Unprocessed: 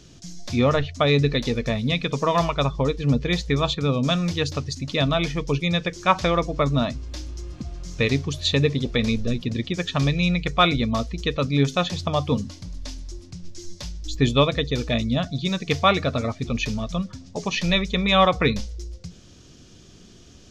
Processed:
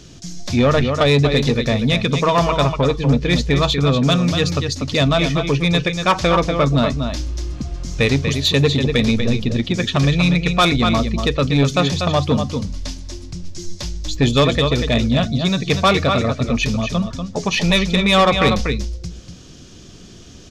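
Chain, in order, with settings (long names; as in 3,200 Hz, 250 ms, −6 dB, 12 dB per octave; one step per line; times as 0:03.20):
single-tap delay 241 ms −8 dB
soft clipping −14.5 dBFS, distortion −14 dB
level +7 dB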